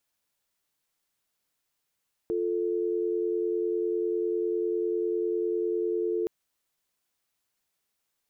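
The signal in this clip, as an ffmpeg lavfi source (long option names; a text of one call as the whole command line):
ffmpeg -f lavfi -i "aevalsrc='0.0398*(sin(2*PI*350*t)+sin(2*PI*440*t))':duration=3.97:sample_rate=44100" out.wav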